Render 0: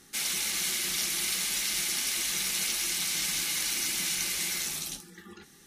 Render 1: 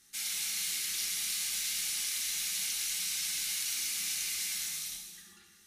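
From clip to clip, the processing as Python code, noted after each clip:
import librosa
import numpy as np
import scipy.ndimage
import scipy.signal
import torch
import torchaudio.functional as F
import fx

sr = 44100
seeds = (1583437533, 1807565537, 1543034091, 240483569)

y = fx.tone_stack(x, sr, knobs='5-5-5')
y = fx.notch(y, sr, hz=990.0, q=15.0)
y = fx.rev_gated(y, sr, seeds[0], gate_ms=490, shape='falling', drr_db=0.5)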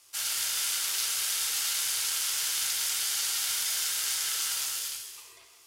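y = scipy.signal.sosfilt(scipy.signal.butter(12, 310.0, 'highpass', fs=sr, output='sos'), x)
y = y * np.sin(2.0 * np.pi * 740.0 * np.arange(len(y)) / sr)
y = y * 10.0 ** (7.5 / 20.0)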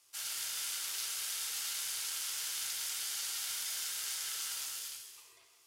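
y = scipy.signal.sosfilt(scipy.signal.butter(2, 71.0, 'highpass', fs=sr, output='sos'), x)
y = y * 10.0 ** (-8.5 / 20.0)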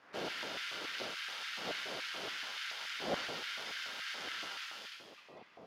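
y = fx.dmg_wind(x, sr, seeds[1], corner_hz=190.0, level_db=-38.0)
y = fx.air_absorb(y, sr, metres=300.0)
y = fx.filter_lfo_highpass(y, sr, shape='square', hz=3.5, low_hz=600.0, high_hz=1600.0, q=1.6)
y = y * 10.0 ** (6.0 / 20.0)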